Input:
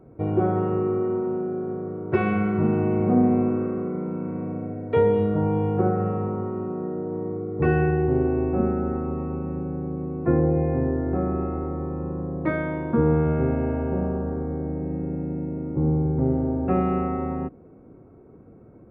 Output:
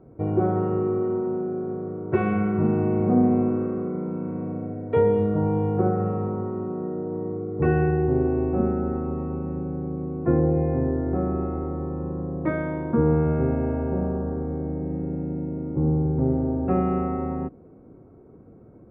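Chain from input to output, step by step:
low-pass filter 1,700 Hz 6 dB per octave

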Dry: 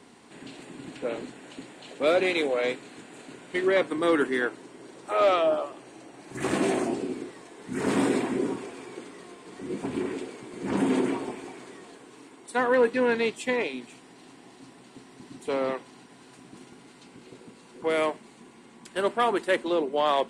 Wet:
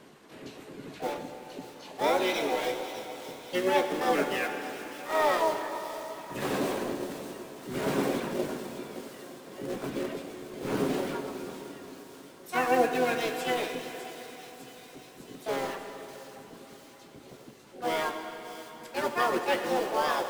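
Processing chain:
reverb reduction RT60 1.9 s
high-shelf EQ 4,500 Hz −5.5 dB
in parallel at −7.5 dB: wrap-around overflow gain 30 dB
on the sum: tuned comb filter 72 Hz, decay 0.17 s, harmonics all, mix 70%
pitch-shifted copies added −12 semitones −17 dB, −7 semitones −10 dB, +7 semitones −2 dB
on a send: delay with a high-pass on its return 603 ms, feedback 68%, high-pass 4,300 Hz, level −8 dB
on the sum: dense smooth reverb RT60 4.3 s, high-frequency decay 0.8×, DRR 5 dB
level −1 dB

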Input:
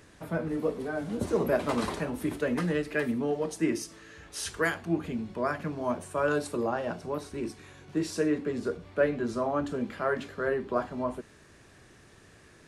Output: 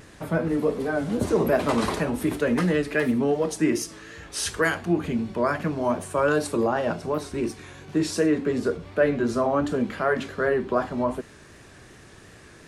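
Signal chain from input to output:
in parallel at −0.5 dB: brickwall limiter −23 dBFS, peak gain reduction 9.5 dB
on the sum: pitch vibrato 2.7 Hz 51 cents
level +1.5 dB

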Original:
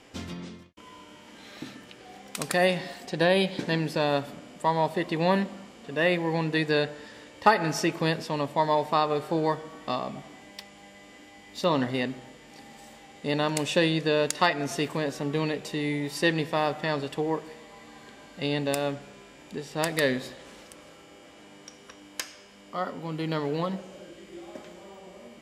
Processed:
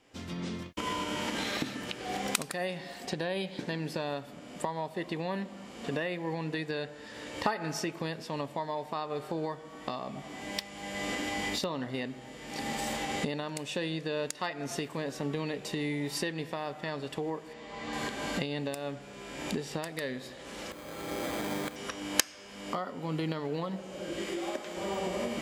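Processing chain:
camcorder AGC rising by 35 dB per second
0:17.53–0:17.93: low-pass filter 5,700 Hz 12 dB per octave
0:20.71–0:21.76: bad sample-rate conversion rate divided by 8×, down filtered, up hold
0:24.22–0:24.77: parametric band 89 Hz −13 dB 2.3 octaves
level −12 dB

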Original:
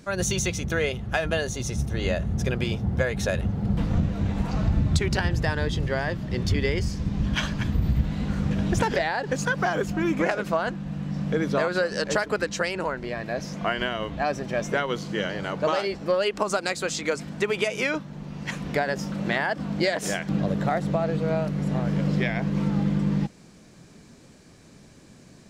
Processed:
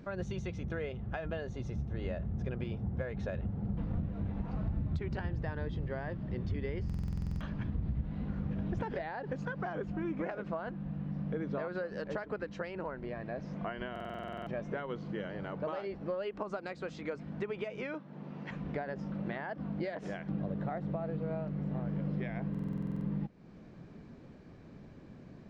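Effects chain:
0:17.94–0:18.51: Bessel high-pass filter 250 Hz, order 2
downward compressor 2 to 1, threshold −40 dBFS, peak gain reduction 13 dB
head-to-tape spacing loss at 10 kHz 36 dB
buffer that repeats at 0:06.85/0:13.91/0:22.50, samples 2,048, times 11

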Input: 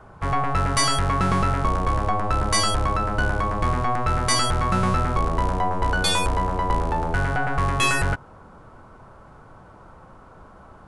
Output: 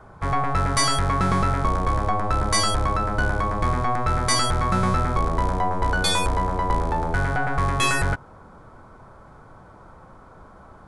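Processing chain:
notch filter 2,800 Hz, Q 7.6

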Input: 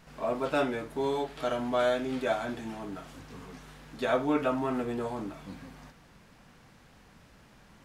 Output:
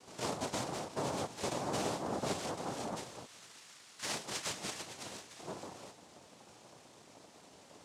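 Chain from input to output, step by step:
0:03.25–0:05.39: high-pass filter 1,300 Hz 12 dB per octave
downward compressor 6 to 1, threshold −34 dBFS, peak gain reduction 11 dB
cochlear-implant simulation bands 2

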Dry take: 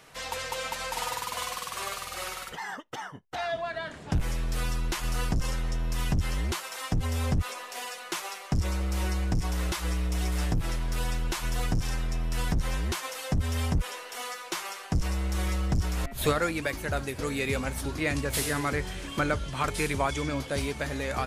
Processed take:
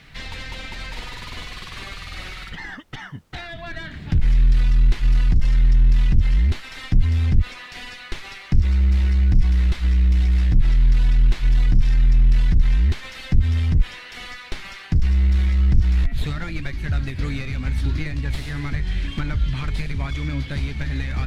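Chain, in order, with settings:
octave-band graphic EQ 500/1,000/2,000/4,000 Hz −11/−5/+10/+12 dB
bit-depth reduction 10 bits, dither triangular
asymmetric clip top −27.5 dBFS
downward compressor, threshold −29 dBFS, peak gain reduction 10.5 dB
spectral tilt −4 dB per octave
level +1.5 dB

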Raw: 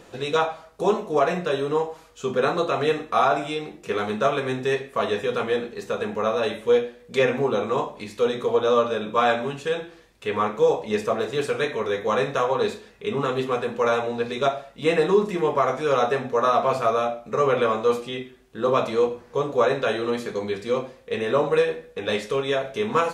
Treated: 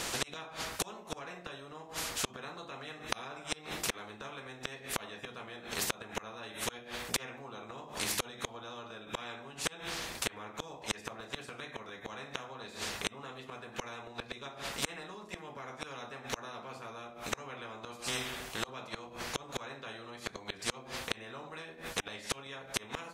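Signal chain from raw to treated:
mains-hum notches 50/100/150/200 Hz
gate with flip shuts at −19 dBFS, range −37 dB
every bin compressed towards the loudest bin 4 to 1
level +6.5 dB

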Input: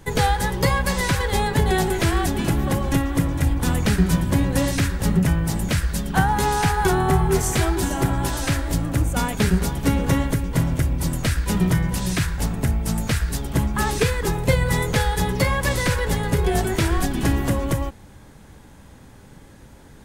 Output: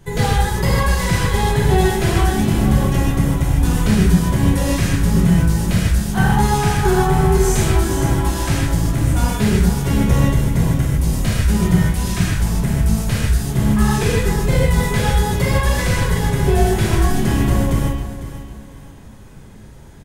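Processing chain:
low-shelf EQ 130 Hz +7.5 dB
on a send: repeating echo 501 ms, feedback 34%, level −13 dB
on the sum: reverb whose tail is shaped and stops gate 180 ms flat, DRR −5.5 dB
level −5 dB

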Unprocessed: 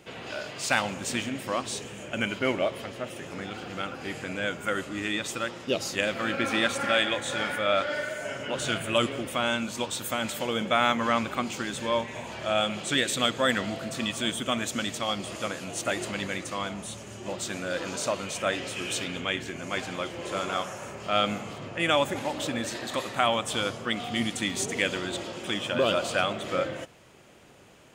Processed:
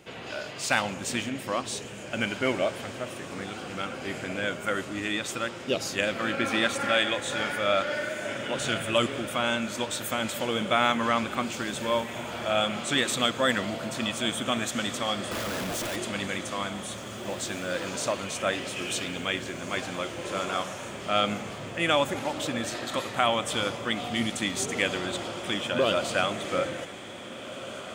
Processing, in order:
0:15.31–0:15.96: comparator with hysteresis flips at −44 dBFS
feedback delay with all-pass diffusion 1,817 ms, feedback 60%, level −13 dB

